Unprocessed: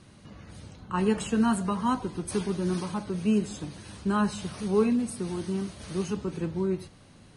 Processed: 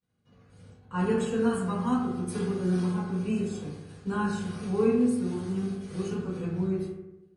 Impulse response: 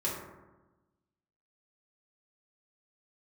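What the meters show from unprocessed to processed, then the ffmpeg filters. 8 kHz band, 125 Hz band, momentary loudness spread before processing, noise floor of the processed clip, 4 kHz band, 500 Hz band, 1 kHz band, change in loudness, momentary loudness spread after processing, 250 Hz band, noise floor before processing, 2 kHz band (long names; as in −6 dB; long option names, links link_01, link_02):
−5.5 dB, +1.5 dB, 13 LU, −60 dBFS, −5.5 dB, +0.5 dB, −3.5 dB, −0.5 dB, 9 LU, −0.5 dB, −53 dBFS, −1.0 dB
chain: -filter_complex "[0:a]agate=range=-33dB:threshold=-38dB:ratio=3:detection=peak[link_01];[1:a]atrim=start_sample=2205,asetrate=57330,aresample=44100[link_02];[link_01][link_02]afir=irnorm=-1:irlink=0,volume=-6dB"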